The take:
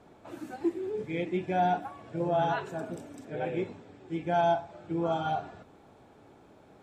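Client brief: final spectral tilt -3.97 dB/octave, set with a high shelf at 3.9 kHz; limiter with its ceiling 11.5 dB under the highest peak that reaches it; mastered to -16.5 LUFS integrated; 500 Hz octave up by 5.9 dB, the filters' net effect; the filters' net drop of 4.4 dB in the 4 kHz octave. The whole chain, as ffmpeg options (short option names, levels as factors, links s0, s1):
-af "equalizer=f=500:t=o:g=9,highshelf=f=3900:g=-4.5,equalizer=f=4000:t=o:g=-3.5,volume=7.08,alimiter=limit=0.447:level=0:latency=1"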